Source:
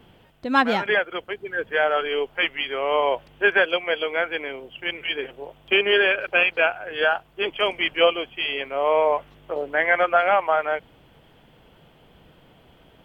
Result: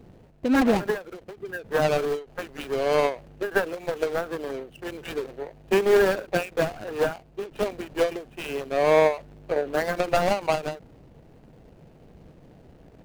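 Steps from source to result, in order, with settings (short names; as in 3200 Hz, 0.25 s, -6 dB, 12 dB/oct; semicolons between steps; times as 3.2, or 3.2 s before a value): median filter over 41 samples; ending taper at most 180 dB/s; gain +5 dB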